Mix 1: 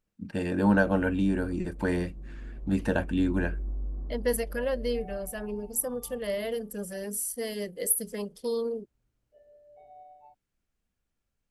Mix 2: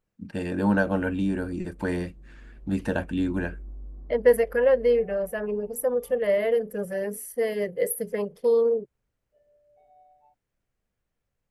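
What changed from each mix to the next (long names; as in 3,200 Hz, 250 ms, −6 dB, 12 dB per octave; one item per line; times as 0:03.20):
second voice: add octave-band graphic EQ 125/250/500/1,000/2,000/4,000/8,000 Hz +11/−4/+10/+3/+8/−7/−10 dB
background −6.5 dB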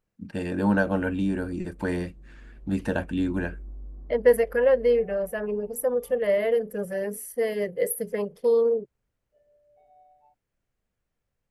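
nothing changed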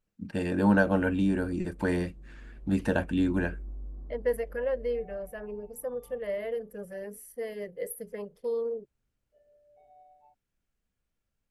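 second voice −10.0 dB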